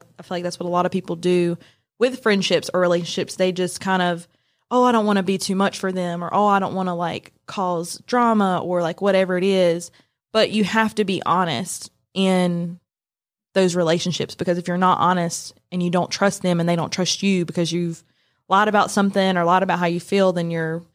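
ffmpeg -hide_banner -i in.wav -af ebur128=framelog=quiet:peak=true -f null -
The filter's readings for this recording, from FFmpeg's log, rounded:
Integrated loudness:
  I:         -20.4 LUFS
  Threshold: -30.8 LUFS
Loudness range:
  LRA:         2.2 LU
  Threshold: -40.9 LUFS
  LRA low:   -21.9 LUFS
  LRA high:  -19.8 LUFS
True peak:
  Peak:       -2.5 dBFS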